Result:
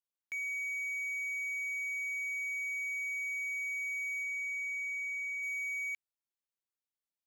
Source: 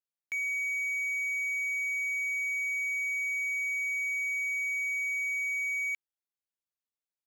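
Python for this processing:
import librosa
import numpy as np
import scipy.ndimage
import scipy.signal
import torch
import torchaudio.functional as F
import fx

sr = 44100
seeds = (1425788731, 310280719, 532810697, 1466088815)

y = fx.high_shelf(x, sr, hz=fx.line((4.22, 12000.0), (5.42, 6400.0)), db=-11.0, at=(4.22, 5.42), fade=0.02)
y = F.gain(torch.from_numpy(y), -5.0).numpy()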